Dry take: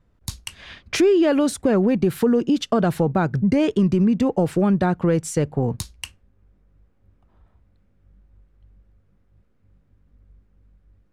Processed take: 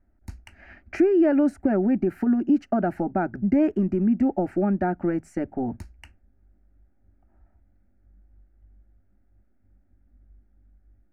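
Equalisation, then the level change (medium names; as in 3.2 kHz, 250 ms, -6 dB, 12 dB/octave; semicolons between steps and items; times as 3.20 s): treble shelf 4.7 kHz -11.5 dB; peaking EQ 9.8 kHz -13.5 dB 2.6 oct; static phaser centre 710 Hz, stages 8; 0.0 dB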